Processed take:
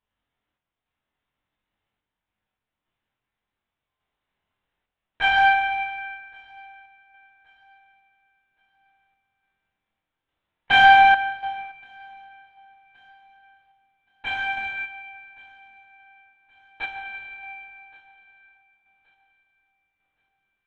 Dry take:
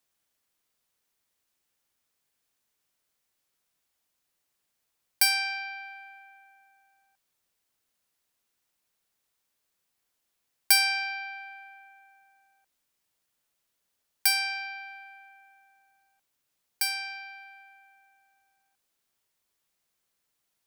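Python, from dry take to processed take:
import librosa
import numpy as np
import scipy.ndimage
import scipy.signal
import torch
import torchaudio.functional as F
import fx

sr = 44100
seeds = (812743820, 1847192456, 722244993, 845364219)

p1 = fx.lpc_vocoder(x, sr, seeds[0], excitation='whisper', order=10)
p2 = 10.0 ** (-27.0 / 20.0) * np.tanh(p1 / 10.0 ** (-27.0 / 20.0))
p3 = p1 + F.gain(torch.from_numpy(p2), -7.0).numpy()
p4 = fx.lowpass(p3, sr, hz=2600.0, slope=6)
p5 = fx.doubler(p4, sr, ms=23.0, db=-4.0)
p6 = fx.echo_feedback(p5, sr, ms=1123, feedback_pct=30, wet_db=-19.0)
p7 = fx.rev_plate(p6, sr, seeds[1], rt60_s=2.3, hf_ratio=0.8, predelay_ms=0, drr_db=-2.0)
p8 = fx.tremolo_random(p7, sr, seeds[2], hz=3.5, depth_pct=55)
p9 = fx.upward_expand(p8, sr, threshold_db=-39.0, expansion=1.5)
y = F.gain(torch.from_numpy(p9), 8.5).numpy()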